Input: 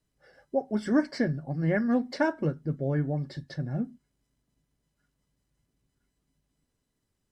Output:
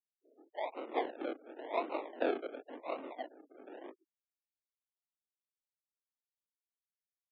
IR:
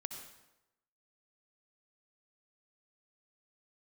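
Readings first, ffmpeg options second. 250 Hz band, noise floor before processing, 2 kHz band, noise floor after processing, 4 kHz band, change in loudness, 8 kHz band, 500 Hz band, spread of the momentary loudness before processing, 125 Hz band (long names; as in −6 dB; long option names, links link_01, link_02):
−17.5 dB, −80 dBFS, −10.5 dB, below −85 dBFS, −7.0 dB, −10.5 dB, can't be measured, −7.0 dB, 8 LU, below −40 dB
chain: -filter_complex "[0:a]acrossover=split=540 2300:gain=0.0794 1 0.251[link_01][link_02][link_03];[link_01][link_02][link_03]amix=inputs=3:normalize=0,aecho=1:1:32|46|78:0.141|0.631|0.531,acrossover=split=1000[link_04][link_05];[link_04]aeval=exprs='val(0)*(1-1/2+1/2*cos(2*PI*6.2*n/s))':channel_layout=same[link_06];[link_05]aeval=exprs='val(0)*(1-1/2-1/2*cos(2*PI*6.2*n/s))':channel_layout=same[link_07];[link_06][link_07]amix=inputs=2:normalize=0,afftfilt=real='hypot(re,im)*cos(2*PI*random(0))':imag='hypot(re,im)*sin(2*PI*random(1))':win_size=512:overlap=0.75,acrusher=bits=5:mode=log:mix=0:aa=0.000001,flanger=delay=18:depth=6.5:speed=1.5,acrusher=samples=39:mix=1:aa=0.000001:lfo=1:lforange=23.4:lforate=0.92,highpass=frequency=180:width_type=q:width=0.5412,highpass=frequency=180:width_type=q:width=1.307,lowpass=frequency=3500:width_type=q:width=0.5176,lowpass=frequency=3500:width_type=q:width=0.7071,lowpass=frequency=3500:width_type=q:width=1.932,afreqshift=100,afftfilt=real='re*gte(hypot(re,im),0.000447)':imag='im*gte(hypot(re,im),0.000447)':win_size=1024:overlap=0.75,tiltshelf=frequency=860:gain=3.5,volume=10dB"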